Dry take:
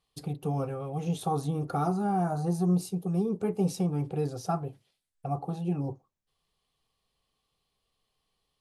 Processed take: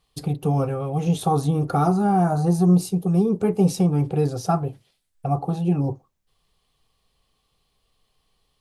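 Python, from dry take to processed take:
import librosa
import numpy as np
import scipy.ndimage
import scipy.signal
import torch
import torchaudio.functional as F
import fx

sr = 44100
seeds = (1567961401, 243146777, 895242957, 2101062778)

y = fx.low_shelf(x, sr, hz=77.0, db=7.0)
y = y * 10.0 ** (8.0 / 20.0)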